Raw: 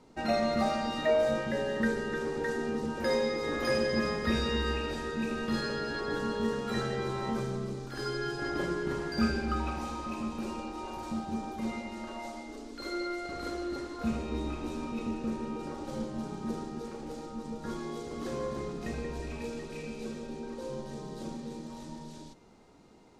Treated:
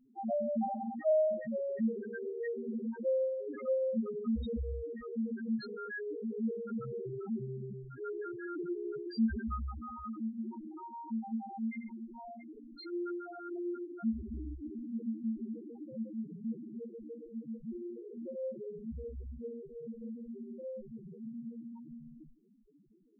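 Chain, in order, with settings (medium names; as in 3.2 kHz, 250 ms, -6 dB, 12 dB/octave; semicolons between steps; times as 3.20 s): peaking EQ 2.1 kHz +2 dB 1.1 oct; loudest bins only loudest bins 2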